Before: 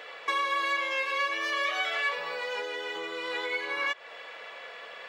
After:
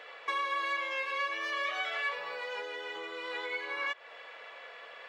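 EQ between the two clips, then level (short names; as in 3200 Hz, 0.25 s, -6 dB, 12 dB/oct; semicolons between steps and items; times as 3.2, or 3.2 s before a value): low shelf 260 Hz -9 dB; high shelf 4100 Hz -7 dB; -3.0 dB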